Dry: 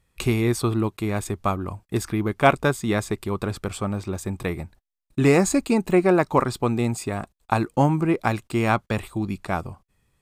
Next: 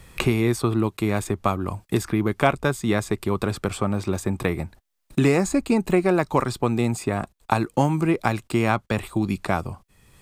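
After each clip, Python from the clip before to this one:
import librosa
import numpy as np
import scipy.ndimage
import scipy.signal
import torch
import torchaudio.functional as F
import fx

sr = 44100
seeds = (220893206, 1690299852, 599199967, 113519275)

y = fx.band_squash(x, sr, depth_pct=70)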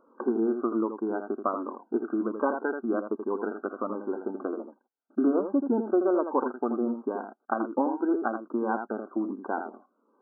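y = fx.brickwall_bandpass(x, sr, low_hz=220.0, high_hz=1600.0)
y = y + 10.0 ** (-7.5 / 20.0) * np.pad(y, (int(81 * sr / 1000.0), 0))[:len(y)]
y = fx.notch_cascade(y, sr, direction='falling', hz=1.3)
y = F.gain(torch.from_numpy(y), -3.0).numpy()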